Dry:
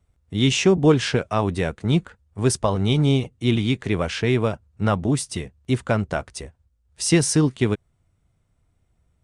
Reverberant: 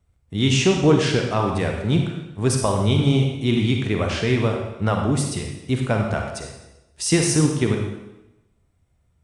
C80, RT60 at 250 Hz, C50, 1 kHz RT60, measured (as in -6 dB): 6.0 dB, 0.95 s, 3.0 dB, 0.95 s